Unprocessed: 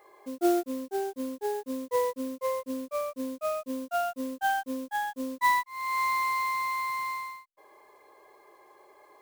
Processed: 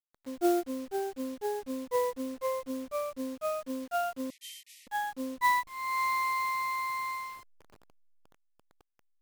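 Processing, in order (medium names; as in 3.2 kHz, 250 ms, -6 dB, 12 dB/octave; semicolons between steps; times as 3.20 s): send-on-delta sampling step -45.5 dBFS; 4.30–4.87 s: brick-wall FIR band-pass 1.8–13 kHz; trim -2 dB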